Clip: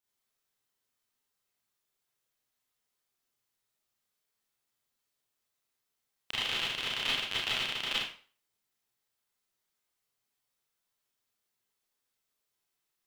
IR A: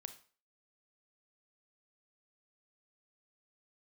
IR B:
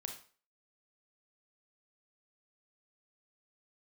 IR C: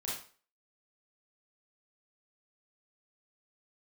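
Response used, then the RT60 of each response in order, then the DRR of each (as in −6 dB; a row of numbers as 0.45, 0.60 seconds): C; 0.40, 0.40, 0.40 seconds; 9.0, 3.0, −7.0 decibels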